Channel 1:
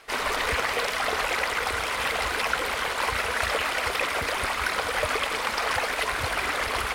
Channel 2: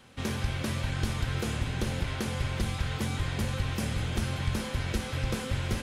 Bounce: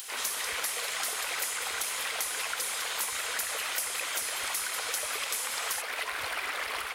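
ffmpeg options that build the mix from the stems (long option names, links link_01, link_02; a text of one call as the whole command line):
ffmpeg -i stem1.wav -i stem2.wav -filter_complex "[0:a]bass=frequency=250:gain=-12,treble=frequency=4000:gain=-11,dynaudnorm=framelen=220:gausssize=3:maxgain=5dB,volume=-12.5dB[link_01];[1:a]highpass=590,highshelf=frequency=4400:gain=11,acompressor=mode=upward:threshold=-43dB:ratio=2.5,volume=-5.5dB[link_02];[link_01][link_02]amix=inputs=2:normalize=0,crystalizer=i=5.5:c=0,acompressor=threshold=-30dB:ratio=5" out.wav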